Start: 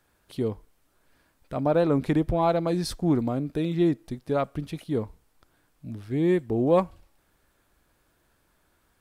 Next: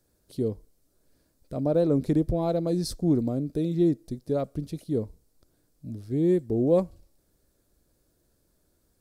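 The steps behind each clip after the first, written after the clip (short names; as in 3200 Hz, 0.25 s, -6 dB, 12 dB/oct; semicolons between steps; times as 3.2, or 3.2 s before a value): band shelf 1600 Hz -12.5 dB 2.4 oct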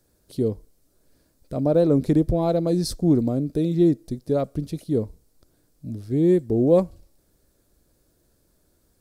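short-mantissa float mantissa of 8-bit; gain +4.5 dB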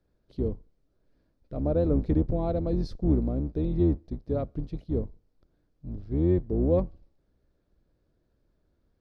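octaver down 2 oct, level +1 dB; air absorption 240 m; gain -7 dB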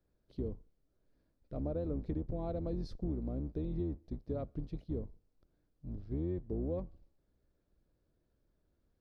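compressor 6:1, threshold -27 dBFS, peak gain reduction 9 dB; gain -6 dB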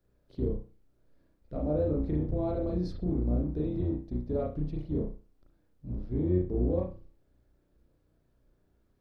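reverb, pre-delay 33 ms, DRR -2 dB; gain +3 dB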